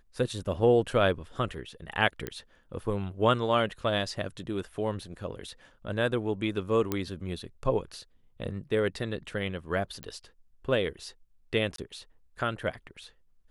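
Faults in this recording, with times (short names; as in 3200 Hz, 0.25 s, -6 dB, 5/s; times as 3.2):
2.27 pop -18 dBFS
6.92 pop -14 dBFS
10.03 pop -23 dBFS
11.76–11.78 gap 23 ms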